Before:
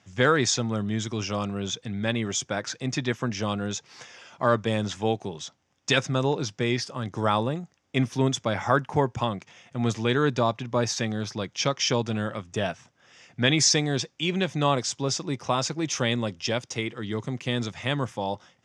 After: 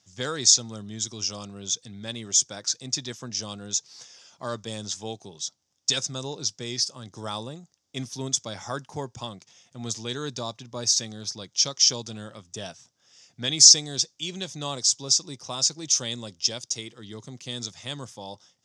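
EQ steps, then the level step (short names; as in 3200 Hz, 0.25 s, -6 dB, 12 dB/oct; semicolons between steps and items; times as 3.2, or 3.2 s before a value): dynamic EQ 6900 Hz, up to +6 dB, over -42 dBFS, Q 0.76; resonant high shelf 3300 Hz +11.5 dB, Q 1.5; -10.0 dB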